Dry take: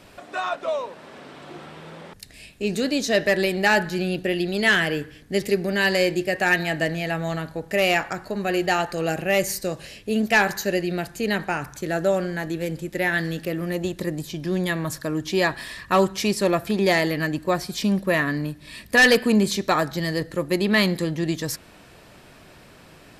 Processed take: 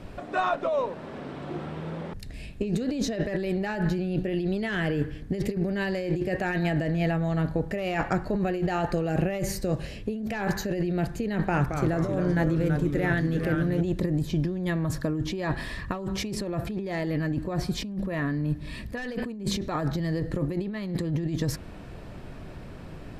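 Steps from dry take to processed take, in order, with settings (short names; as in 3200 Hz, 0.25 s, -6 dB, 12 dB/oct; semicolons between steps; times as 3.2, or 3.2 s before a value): tilt -3 dB/oct; negative-ratio compressor -24 dBFS, ratio -1; 11.34–13.81 echoes that change speed 0.205 s, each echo -2 st, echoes 3, each echo -6 dB; gain -3.5 dB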